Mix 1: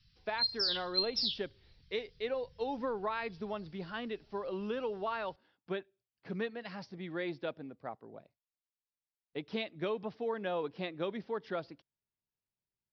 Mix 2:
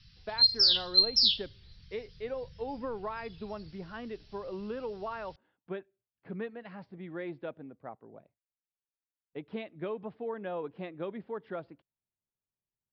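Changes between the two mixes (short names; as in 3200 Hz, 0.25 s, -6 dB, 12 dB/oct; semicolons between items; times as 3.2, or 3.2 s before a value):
speech: add air absorption 440 m; background +9.5 dB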